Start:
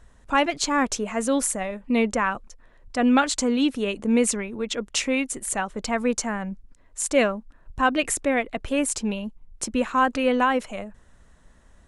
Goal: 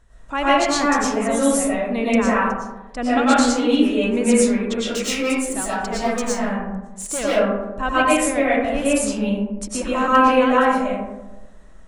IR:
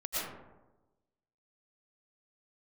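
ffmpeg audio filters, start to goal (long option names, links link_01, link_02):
-filter_complex "[0:a]asplit=3[link_01][link_02][link_03];[link_01]afade=type=out:start_time=4.91:duration=0.02[link_04];[link_02]asoftclip=type=hard:threshold=-21dB,afade=type=in:start_time=4.91:duration=0.02,afade=type=out:start_time=7.23:duration=0.02[link_05];[link_03]afade=type=in:start_time=7.23:duration=0.02[link_06];[link_04][link_05][link_06]amix=inputs=3:normalize=0[link_07];[1:a]atrim=start_sample=2205[link_08];[link_07][link_08]afir=irnorm=-1:irlink=0"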